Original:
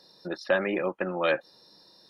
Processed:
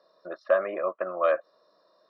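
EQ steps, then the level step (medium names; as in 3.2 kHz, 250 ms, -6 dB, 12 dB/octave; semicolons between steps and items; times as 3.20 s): two resonant band-passes 850 Hz, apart 0.82 oct; +8.5 dB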